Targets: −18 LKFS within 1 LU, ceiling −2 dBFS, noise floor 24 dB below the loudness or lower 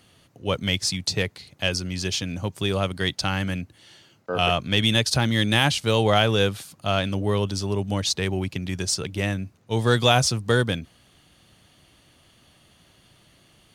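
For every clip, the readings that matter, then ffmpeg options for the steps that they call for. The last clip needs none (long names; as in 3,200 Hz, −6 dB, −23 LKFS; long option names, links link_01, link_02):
integrated loudness −23.5 LKFS; sample peak −4.0 dBFS; target loudness −18.0 LKFS
→ -af "volume=5.5dB,alimiter=limit=-2dB:level=0:latency=1"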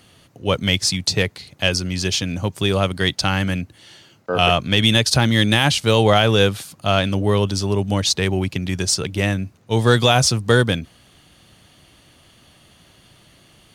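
integrated loudness −18.5 LKFS; sample peak −2.0 dBFS; background noise floor −53 dBFS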